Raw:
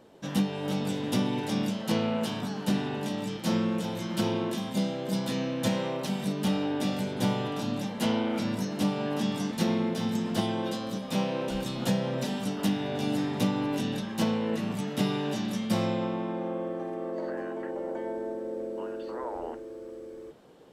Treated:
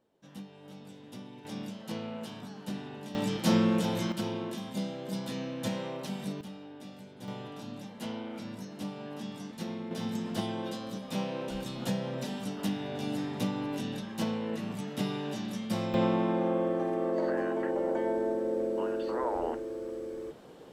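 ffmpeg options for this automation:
-af "asetnsamples=n=441:p=0,asendcmd='1.45 volume volume -10.5dB;3.15 volume volume 2.5dB;4.12 volume volume -6dB;6.41 volume volume -17.5dB;7.28 volume volume -11dB;9.91 volume volume -5dB;15.94 volume volume 4dB',volume=-18.5dB"

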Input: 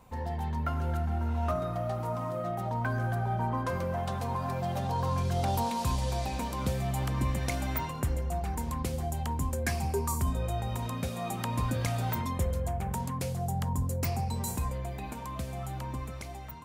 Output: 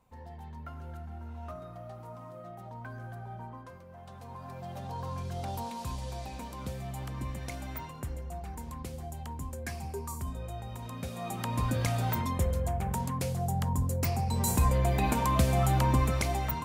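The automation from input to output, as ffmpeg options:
-af "volume=19.5dB,afade=t=out:st=3.38:d=0.46:silence=0.398107,afade=t=in:st=3.84:d=1.1:silence=0.237137,afade=t=in:st=10.8:d=0.98:silence=0.375837,afade=t=in:st=14.25:d=0.82:silence=0.298538"

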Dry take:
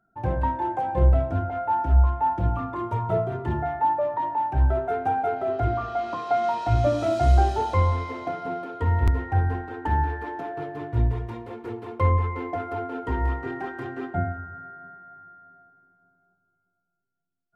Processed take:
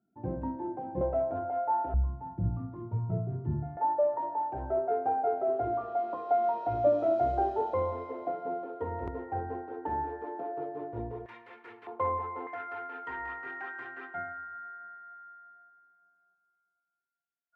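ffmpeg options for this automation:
-af "asetnsamples=n=441:p=0,asendcmd='1.01 bandpass f 590;1.94 bandpass f 150;3.77 bandpass f 520;11.26 bandpass f 2000;11.87 bandpass f 780;12.47 bandpass f 1700',bandpass=f=260:t=q:w=1.7:csg=0"

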